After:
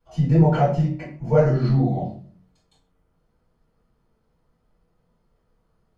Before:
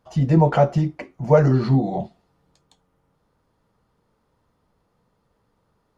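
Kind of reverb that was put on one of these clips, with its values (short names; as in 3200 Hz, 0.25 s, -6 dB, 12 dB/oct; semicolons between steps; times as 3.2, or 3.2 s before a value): shoebox room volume 36 m³, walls mixed, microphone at 2.9 m; gain -17 dB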